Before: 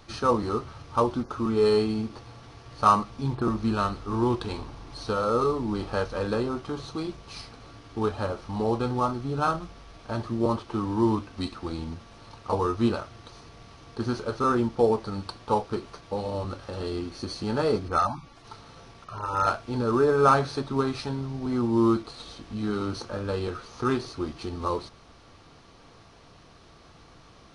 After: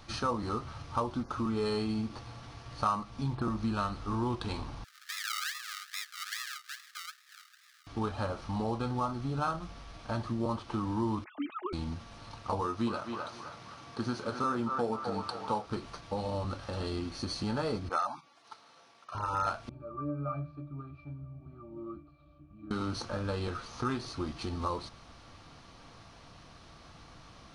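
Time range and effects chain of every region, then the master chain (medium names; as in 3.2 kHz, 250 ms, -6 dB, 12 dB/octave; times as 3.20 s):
4.84–7.87 s: decimation with a swept rate 41×, swing 60% 2.4 Hz + rippled Chebyshev high-pass 1.2 kHz, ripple 6 dB
11.24–11.73 s: formants replaced by sine waves + comb 4.7 ms, depth 50%
12.61–15.66 s: high-pass 130 Hz + band-passed feedback delay 259 ms, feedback 49%, band-pass 1.1 kHz, level -5 dB
17.89–19.15 s: gate -42 dBFS, range -8 dB + high-pass 370 Hz
19.69–22.71 s: boxcar filter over 5 samples + pitch-class resonator D, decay 0.23 s
whole clip: peaking EQ 410 Hz -7 dB 0.55 oct; compression 2.5:1, threshold -31 dBFS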